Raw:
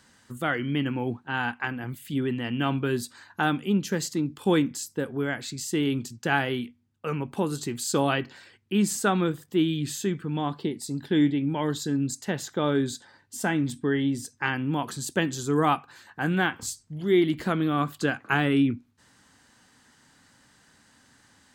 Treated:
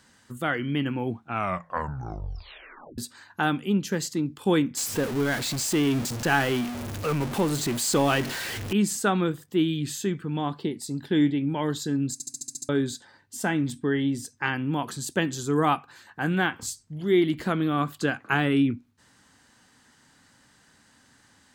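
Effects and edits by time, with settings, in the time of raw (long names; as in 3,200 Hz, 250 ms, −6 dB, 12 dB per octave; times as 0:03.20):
0:01.08: tape stop 1.90 s
0:04.77–0:08.73: converter with a step at zero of −27.5 dBFS
0:12.13: stutter in place 0.07 s, 8 plays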